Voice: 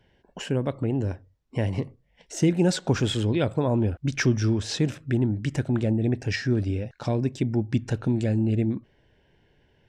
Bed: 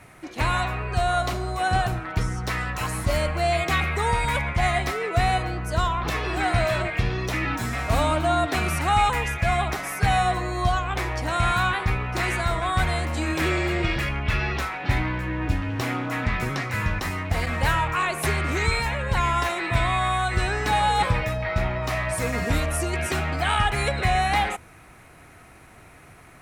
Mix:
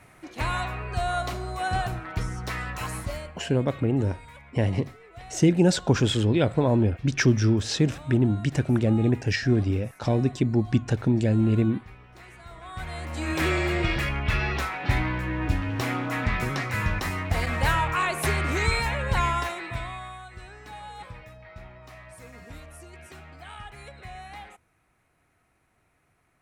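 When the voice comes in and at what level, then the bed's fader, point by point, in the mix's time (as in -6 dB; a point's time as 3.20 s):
3.00 s, +2.0 dB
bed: 2.97 s -4.5 dB
3.48 s -23 dB
12.37 s -23 dB
13.38 s -1 dB
19.23 s -1 dB
20.30 s -20 dB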